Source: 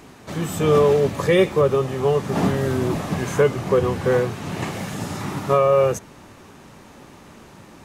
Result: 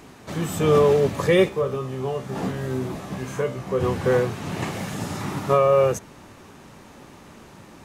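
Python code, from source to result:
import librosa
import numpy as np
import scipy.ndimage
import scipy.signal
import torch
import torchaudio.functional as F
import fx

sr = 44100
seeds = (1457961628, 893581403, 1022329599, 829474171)

y = fx.comb_fb(x, sr, f0_hz=65.0, decay_s=0.31, harmonics='all', damping=0.0, mix_pct=80, at=(1.48, 3.79), fade=0.02)
y = y * librosa.db_to_amplitude(-1.0)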